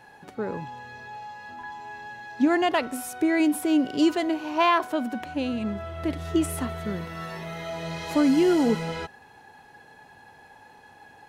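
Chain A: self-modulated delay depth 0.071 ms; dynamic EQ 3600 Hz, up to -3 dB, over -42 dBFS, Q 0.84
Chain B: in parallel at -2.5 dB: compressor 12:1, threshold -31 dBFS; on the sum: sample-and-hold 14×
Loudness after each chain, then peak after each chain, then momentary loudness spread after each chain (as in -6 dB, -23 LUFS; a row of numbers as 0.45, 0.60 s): -26.0, -24.5 LUFS; -11.5, -9.5 dBFS; 18, 14 LU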